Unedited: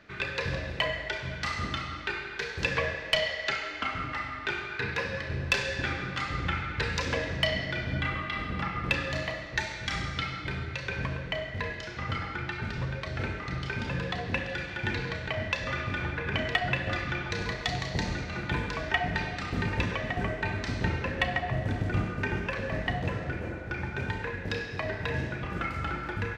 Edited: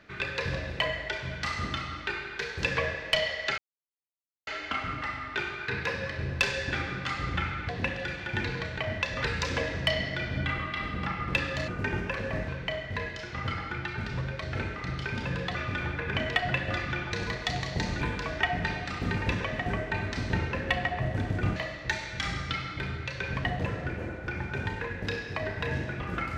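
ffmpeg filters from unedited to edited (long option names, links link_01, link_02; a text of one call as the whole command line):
ffmpeg -i in.wav -filter_complex "[0:a]asplit=10[link_01][link_02][link_03][link_04][link_05][link_06][link_07][link_08][link_09][link_10];[link_01]atrim=end=3.58,asetpts=PTS-STARTPTS,afade=type=out:start_time=3.576:duration=0.004:curve=hsin,apad=pad_dur=0.89[link_11];[link_02]atrim=start=3.58:end=6.802,asetpts=PTS-STARTPTS,afade=type=in:duration=0.004:curve=hsin[link_12];[link_03]atrim=start=14.188:end=15.742[link_13];[link_04]atrim=start=6.798:end=9.242[link_14];[link_05]atrim=start=22.068:end=22.872[link_15];[link_06]atrim=start=11.118:end=14.192[link_16];[link_07]atrim=start=15.738:end=18.202[link_17];[link_08]atrim=start=18.518:end=22.072[link_18];[link_09]atrim=start=9.238:end=11.122[link_19];[link_10]atrim=start=22.868[link_20];[link_11][link_12]concat=n=2:v=0:a=1[link_21];[link_21][link_13]acrossfade=duration=0.004:curve1=hsin:curve2=hsin[link_22];[link_22][link_14]acrossfade=duration=0.004:curve1=hsin:curve2=hsin[link_23];[link_23][link_15]acrossfade=duration=0.004:curve1=hsin:curve2=hsin[link_24];[link_24][link_16]acrossfade=duration=0.004:curve1=hsin:curve2=hsin[link_25];[link_25][link_17]acrossfade=duration=0.004:curve1=hsin:curve2=hsin[link_26];[link_26][link_18]acrossfade=duration=0.004:curve1=hsin:curve2=hsin[link_27];[link_27][link_19]acrossfade=duration=0.004:curve1=hsin:curve2=hsin[link_28];[link_28][link_20]acrossfade=duration=0.004:curve1=hsin:curve2=hsin" out.wav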